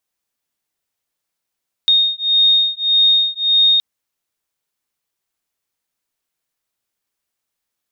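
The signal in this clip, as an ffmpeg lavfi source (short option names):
-f lavfi -i "aevalsrc='0.188*(sin(2*PI*3700*t)+sin(2*PI*3701.7*t))':d=1.92:s=44100"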